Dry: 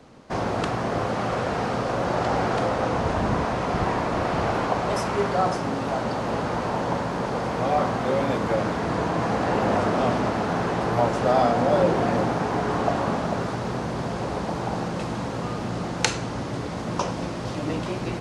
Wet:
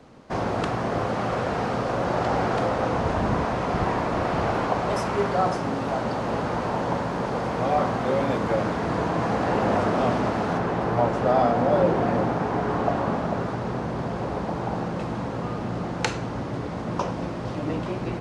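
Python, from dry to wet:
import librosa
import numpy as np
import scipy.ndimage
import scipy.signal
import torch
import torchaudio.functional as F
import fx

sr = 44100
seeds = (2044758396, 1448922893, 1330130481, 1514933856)

y = fx.high_shelf(x, sr, hz=3500.0, db=fx.steps((0.0, -4.0), (10.57, -11.0)))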